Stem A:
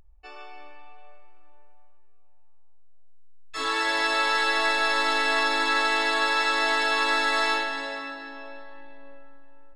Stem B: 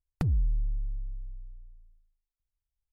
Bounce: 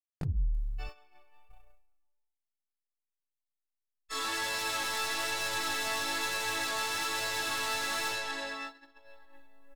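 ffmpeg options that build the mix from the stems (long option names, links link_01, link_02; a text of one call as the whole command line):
ffmpeg -i stem1.wav -i stem2.wav -filter_complex "[0:a]asoftclip=type=tanh:threshold=-29dB,acrusher=bits=11:mix=0:aa=0.000001,aemphasis=mode=production:type=cd,adelay=550,volume=-0.5dB[link_01];[1:a]volume=-2.5dB,asplit=3[link_02][link_03][link_04];[link_02]atrim=end=0.87,asetpts=PTS-STARTPTS,afade=type=out:start_time=0.866:duration=0.004:curve=hsin[link_05];[link_03]atrim=start=0.87:end=1.49,asetpts=PTS-STARTPTS,volume=0[link_06];[link_04]atrim=start=1.49,asetpts=PTS-STARTPTS,afade=type=in:duration=0.004:curve=hsin[link_07];[link_05][link_06][link_07]concat=n=3:v=0:a=1[link_08];[link_01][link_08]amix=inputs=2:normalize=0,flanger=delay=20:depth=2.7:speed=1.1,agate=range=-45dB:threshold=-39dB:ratio=16:detection=peak" out.wav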